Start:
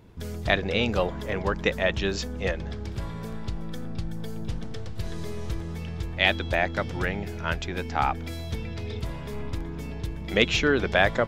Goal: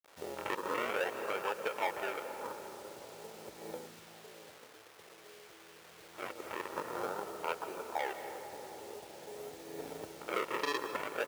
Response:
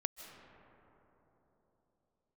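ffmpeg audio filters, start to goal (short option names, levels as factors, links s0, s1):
-filter_complex "[0:a]acrusher=samples=41:mix=1:aa=0.000001:lfo=1:lforange=41:lforate=0.49,afwtdn=0.0178,aecho=1:1:2.2:0.35,asoftclip=type=tanh:threshold=0.2,asplit=2[s0][s1];[1:a]atrim=start_sample=2205[s2];[s1][s2]afir=irnorm=-1:irlink=0,volume=1.58[s3];[s0][s3]amix=inputs=2:normalize=0,alimiter=limit=0.266:level=0:latency=1:release=342,asplit=2[s4][s5];[s5]adelay=580,lowpass=f=1100:p=1,volume=0.133,asplit=2[s6][s7];[s7]adelay=580,lowpass=f=1100:p=1,volume=0.4,asplit=2[s8][s9];[s9]adelay=580,lowpass=f=1100:p=1,volume=0.4[s10];[s4][s6][s8][s10]amix=inputs=4:normalize=0,acompressor=threshold=0.0631:ratio=12,acrusher=bits=8:mix=0:aa=0.000001,highpass=690,volume=1.26"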